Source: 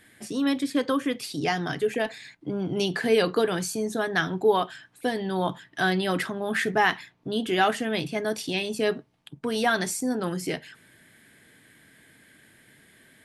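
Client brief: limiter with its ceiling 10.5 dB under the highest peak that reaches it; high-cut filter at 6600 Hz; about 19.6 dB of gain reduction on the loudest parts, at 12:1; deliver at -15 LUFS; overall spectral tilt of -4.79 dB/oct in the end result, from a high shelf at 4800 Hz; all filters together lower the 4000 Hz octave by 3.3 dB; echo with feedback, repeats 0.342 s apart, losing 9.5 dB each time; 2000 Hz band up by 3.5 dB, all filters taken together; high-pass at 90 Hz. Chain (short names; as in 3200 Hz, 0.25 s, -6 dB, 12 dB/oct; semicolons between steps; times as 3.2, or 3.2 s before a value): HPF 90 Hz; LPF 6600 Hz; bell 2000 Hz +6 dB; bell 4000 Hz -5.5 dB; high shelf 4800 Hz -3.5 dB; compressor 12:1, threshold -36 dBFS; limiter -34 dBFS; feedback echo 0.342 s, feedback 33%, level -9.5 dB; gain +29 dB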